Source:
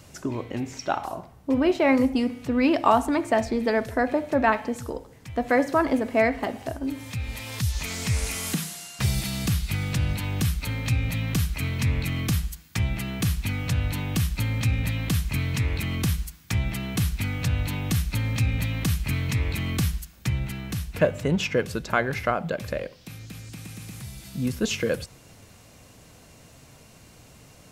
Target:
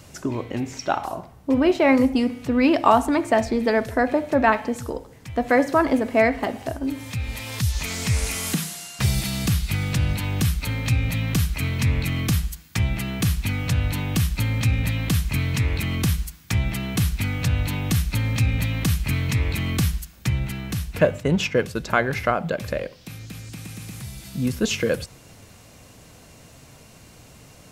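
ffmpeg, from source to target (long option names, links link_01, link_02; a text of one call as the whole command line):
ffmpeg -i in.wav -filter_complex "[0:a]asplit=3[link_01][link_02][link_03];[link_01]afade=type=out:start_time=21.05:duration=0.02[link_04];[link_02]agate=range=-33dB:threshold=-26dB:ratio=3:detection=peak,afade=type=in:start_time=21.05:duration=0.02,afade=type=out:start_time=21.75:duration=0.02[link_05];[link_03]afade=type=in:start_time=21.75:duration=0.02[link_06];[link_04][link_05][link_06]amix=inputs=3:normalize=0,volume=3dB" out.wav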